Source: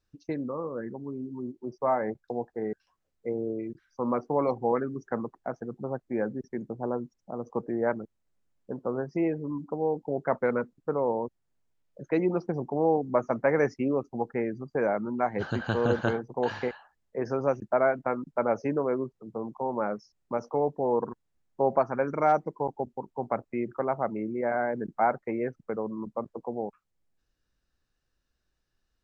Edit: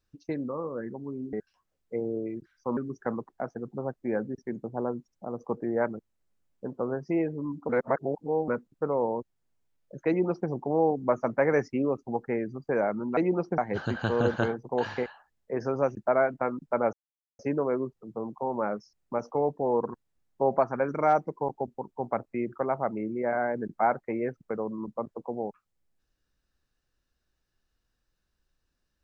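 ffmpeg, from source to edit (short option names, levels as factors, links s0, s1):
-filter_complex "[0:a]asplit=8[s0][s1][s2][s3][s4][s5][s6][s7];[s0]atrim=end=1.332[s8];[s1]atrim=start=2.658:end=4.102[s9];[s2]atrim=start=4.828:end=9.752[s10];[s3]atrim=start=9.748:end=10.542,asetpts=PTS-STARTPTS,areverse[s11];[s4]atrim=start=10.538:end=15.232[s12];[s5]atrim=start=12.138:end=12.552[s13];[s6]atrim=start=15.228:end=18.58,asetpts=PTS-STARTPTS,afade=t=out:st=3.348:d=0.004:c=hsin,apad=pad_dur=0.46[s14];[s7]atrim=start=18.58,asetpts=PTS-STARTPTS,afade=t=in:d=0.004:c=hsin[s15];[s8][s9]acrossfade=d=0.004:c1=hsin:c2=hsin[s16];[s16][s10]acrossfade=d=0.004:c1=hsin:c2=hsin[s17];[s17][s11]acrossfade=d=0.004:c1=hsin:c2=hsin[s18];[s18][s12]acrossfade=d=0.004:c1=hsin:c2=hsin[s19];[s19][s13]acrossfade=d=0.004:c1=hsin:c2=hsin[s20];[s14][s15]concat=n=2:v=0:a=1[s21];[s20][s21]acrossfade=d=0.004:c1=hsin:c2=hsin"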